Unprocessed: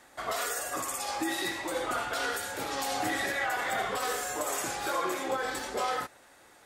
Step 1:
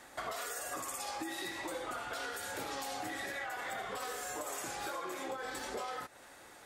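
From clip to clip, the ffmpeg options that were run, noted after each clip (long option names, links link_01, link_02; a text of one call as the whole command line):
ffmpeg -i in.wav -af "acompressor=threshold=-39dB:ratio=12,volume=2dB" out.wav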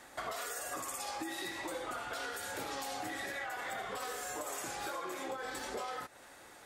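ffmpeg -i in.wav -af anull out.wav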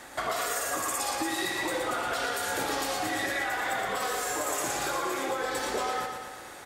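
ffmpeg -i in.wav -af "aecho=1:1:117|234|351|468|585|702|819|936:0.501|0.296|0.174|0.103|0.0607|0.0358|0.0211|0.0125,volume=8.5dB" out.wav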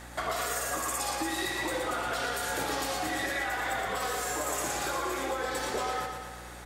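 ffmpeg -i in.wav -af "aeval=exprs='val(0)+0.00501*(sin(2*PI*60*n/s)+sin(2*PI*2*60*n/s)/2+sin(2*PI*3*60*n/s)/3+sin(2*PI*4*60*n/s)/4+sin(2*PI*5*60*n/s)/5)':channel_layout=same,volume=-1.5dB" out.wav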